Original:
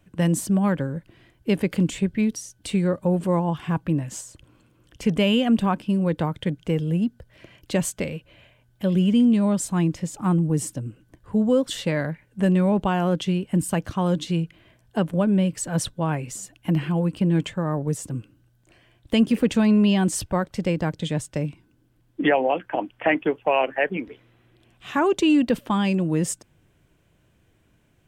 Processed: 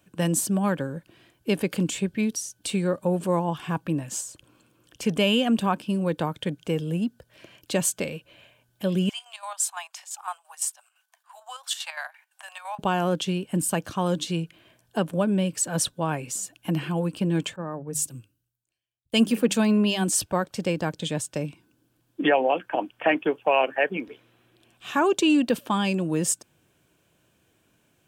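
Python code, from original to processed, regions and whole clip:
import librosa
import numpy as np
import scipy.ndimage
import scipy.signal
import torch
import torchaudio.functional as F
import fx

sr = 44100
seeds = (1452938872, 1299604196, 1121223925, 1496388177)

y = fx.chain(x, sr, fx.steep_highpass(hz=700.0, slope=72),
    fx.chopper(hz=5.9, depth_pct=60, duty_pct=60), at=(9.09, 12.79))
y = fx.chain(y, sr, fx.high_shelf(hz=10000.0, db=7.5),
    fx.hum_notches(base_hz=50, count=4),
    fx.band_widen(depth_pct=100), at=(17.56, 20.1))
y = fx.highpass(y, sr, hz=240.0, slope=6)
y = fx.high_shelf(y, sr, hz=4500.0, db=6.0)
y = fx.notch(y, sr, hz=2000.0, q=8.8)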